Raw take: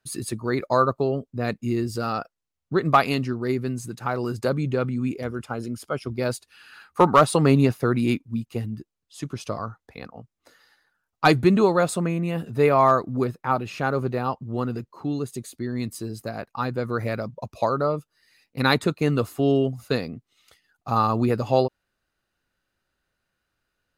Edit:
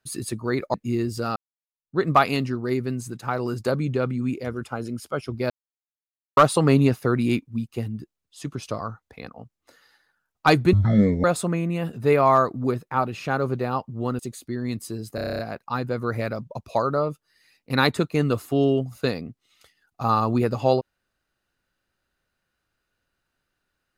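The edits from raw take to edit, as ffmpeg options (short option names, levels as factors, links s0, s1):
-filter_complex "[0:a]asplit=16[s0][s1][s2][s3][s4][s5][s6][s7][s8][s9][s10][s11][s12][s13][s14][s15];[s0]atrim=end=0.742[s16];[s1]atrim=start=1.518:end=2.14,asetpts=PTS-STARTPTS,afade=t=out:st=0.618:d=0.004:c=hsin[s17];[s2]atrim=start=2.14:end=6.28,asetpts=PTS-STARTPTS,afade=t=in:d=0.63:c=exp,afade=t=out:st=4.136:d=0.004:c=hsin[s18];[s3]atrim=start=6.28:end=7.15,asetpts=PTS-STARTPTS,volume=0[s19];[s4]atrim=start=7.15:end=11.514,asetpts=PTS-STARTPTS,afade=t=in:d=0.004:c=hsin[s20];[s5]atrim=start=11.51:end=11.77,asetpts=PTS-STARTPTS,asetrate=22491,aresample=44100,atrim=end_sample=22482,asetpts=PTS-STARTPTS[s21];[s6]atrim=start=11.766:end=14.722[s22];[s7]atrim=start=15.298:end=16.292[s23];[s8]atrim=start=16.258:end=16.292[s24];[s9]atrim=start=16.258:end=16.292[s25];[s10]atrim=start=16.258:end=16.292[s26];[s11]atrim=start=16.258:end=16.292[s27];[s12]atrim=start=16.258:end=16.292[s28];[s13]atrim=start=16.258:end=16.292[s29];[s14]atrim=start=16.258:end=16.292[s30];[s15]atrim=start=16.258[s31];[s17][s18][s19][s20]concat=n=4:v=0:a=1[s32];[s16][s32]acrossfade=d=0.004:c1=hsin:c2=hsin[s33];[s33][s21]acrossfade=d=0.004:c1=hsin:c2=hsin[s34];[s34][s22]acrossfade=d=0.004:c1=hsin:c2=hsin[s35];[s35][s23]acrossfade=d=0.004:c1=hsin:c2=hsin[s36];[s36][s24]acrossfade=d=0.004:c1=hsin:c2=hsin[s37];[s37][s25]acrossfade=d=0.004:c1=hsin:c2=hsin[s38];[s38][s26]acrossfade=d=0.004:c1=hsin:c2=hsin[s39];[s39][s27]acrossfade=d=0.004:c1=hsin:c2=hsin[s40];[s40][s28]acrossfade=d=0.004:c1=hsin:c2=hsin[s41];[s41][s29]acrossfade=d=0.004:c1=hsin:c2=hsin[s42];[s42][s30]acrossfade=d=0.004:c1=hsin:c2=hsin[s43];[s43][s31]acrossfade=d=0.004:c1=hsin:c2=hsin"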